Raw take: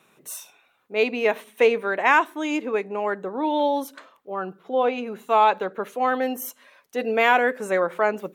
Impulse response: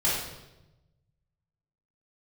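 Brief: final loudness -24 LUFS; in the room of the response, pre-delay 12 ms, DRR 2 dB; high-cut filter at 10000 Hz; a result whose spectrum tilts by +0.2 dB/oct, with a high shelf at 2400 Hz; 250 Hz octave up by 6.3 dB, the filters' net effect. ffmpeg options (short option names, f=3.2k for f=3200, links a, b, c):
-filter_complex "[0:a]lowpass=10k,equalizer=f=250:t=o:g=7.5,highshelf=f=2.4k:g=-6,asplit=2[a][b];[1:a]atrim=start_sample=2205,adelay=12[c];[b][c]afir=irnorm=-1:irlink=0,volume=-13.5dB[d];[a][d]amix=inputs=2:normalize=0,volume=-4.5dB"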